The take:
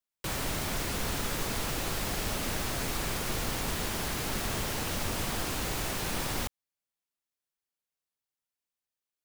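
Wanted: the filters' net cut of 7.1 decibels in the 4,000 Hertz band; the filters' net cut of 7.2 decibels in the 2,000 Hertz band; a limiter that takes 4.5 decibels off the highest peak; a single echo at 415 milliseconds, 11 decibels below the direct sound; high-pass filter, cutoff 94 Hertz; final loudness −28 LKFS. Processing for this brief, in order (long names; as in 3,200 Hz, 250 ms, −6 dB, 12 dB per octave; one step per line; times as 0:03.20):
high-pass filter 94 Hz
parametric band 2,000 Hz −7.5 dB
parametric band 4,000 Hz −7 dB
brickwall limiter −27.5 dBFS
single-tap delay 415 ms −11 dB
level +8 dB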